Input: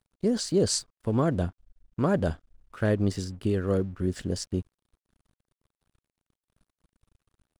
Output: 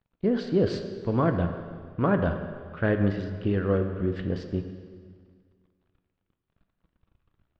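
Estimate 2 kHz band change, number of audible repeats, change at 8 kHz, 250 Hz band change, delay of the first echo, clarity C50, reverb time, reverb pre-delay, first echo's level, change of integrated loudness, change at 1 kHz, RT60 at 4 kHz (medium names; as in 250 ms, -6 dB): +4.5 dB, no echo, under -25 dB, +1.5 dB, no echo, 7.5 dB, 1.9 s, 3 ms, no echo, +1.0 dB, +3.5 dB, 1.7 s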